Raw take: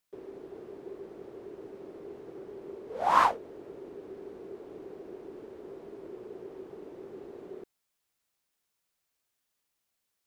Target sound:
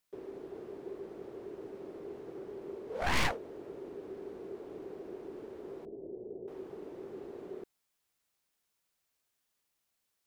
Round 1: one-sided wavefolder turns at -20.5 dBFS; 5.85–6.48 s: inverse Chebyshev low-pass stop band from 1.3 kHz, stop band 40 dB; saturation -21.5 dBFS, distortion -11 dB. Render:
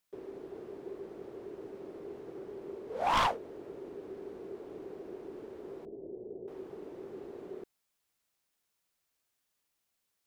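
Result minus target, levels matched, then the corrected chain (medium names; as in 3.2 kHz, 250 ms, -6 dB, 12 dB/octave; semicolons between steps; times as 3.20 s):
one-sided wavefolder: distortion -12 dB
one-sided wavefolder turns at -31 dBFS; 5.85–6.48 s: inverse Chebyshev low-pass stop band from 1.3 kHz, stop band 40 dB; saturation -21.5 dBFS, distortion -10 dB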